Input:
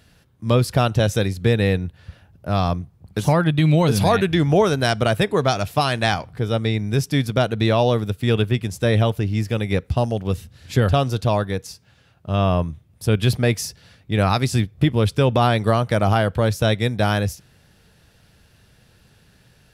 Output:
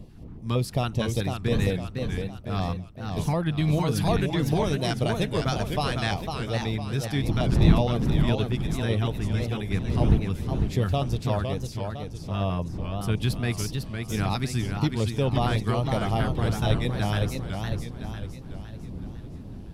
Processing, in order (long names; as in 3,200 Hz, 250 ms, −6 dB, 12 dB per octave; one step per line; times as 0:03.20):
wind on the microphone 180 Hz −24 dBFS
auto-filter notch square 5.4 Hz 550–1,500 Hz
feedback echo with a swinging delay time 506 ms, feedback 46%, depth 176 cents, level −5.5 dB
level −7.5 dB